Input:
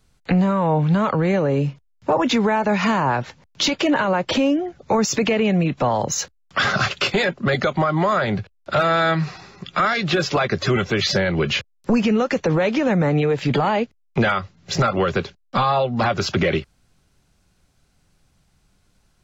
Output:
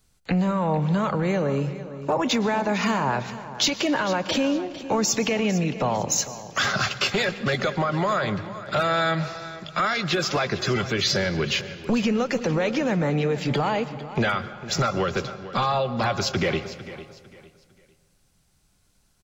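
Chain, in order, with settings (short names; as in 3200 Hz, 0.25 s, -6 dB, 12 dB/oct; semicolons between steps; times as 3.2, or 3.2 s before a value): high shelf 5600 Hz +10.5 dB; feedback echo 0.452 s, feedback 30%, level -15 dB; reverb RT60 1.8 s, pre-delay 0.104 s, DRR 14 dB; gain -5 dB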